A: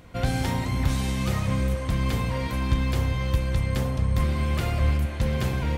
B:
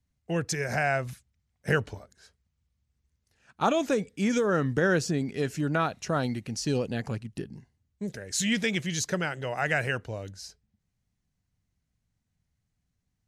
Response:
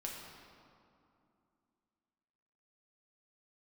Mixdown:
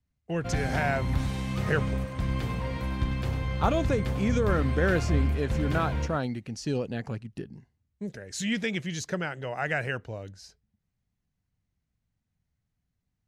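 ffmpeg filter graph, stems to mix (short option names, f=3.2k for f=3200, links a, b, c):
-filter_complex "[0:a]adelay=300,volume=-4.5dB,asplit=2[a][b];[b]volume=-8.5dB[c];[1:a]volume=-1.5dB[d];[c]aecho=0:1:98:1[e];[a][d][e]amix=inputs=3:normalize=0,highshelf=f=5.2k:g=-9"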